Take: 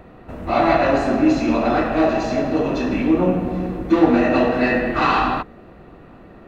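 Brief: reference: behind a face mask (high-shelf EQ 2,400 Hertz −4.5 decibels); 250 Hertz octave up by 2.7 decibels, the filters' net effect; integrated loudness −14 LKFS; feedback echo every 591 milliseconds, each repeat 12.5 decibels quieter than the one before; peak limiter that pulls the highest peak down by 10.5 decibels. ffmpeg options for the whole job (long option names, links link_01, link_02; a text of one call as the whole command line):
ffmpeg -i in.wav -af "equalizer=frequency=250:width_type=o:gain=3.5,alimiter=limit=-10.5dB:level=0:latency=1,highshelf=frequency=2400:gain=-4.5,aecho=1:1:591|1182|1773:0.237|0.0569|0.0137,volume=6dB" out.wav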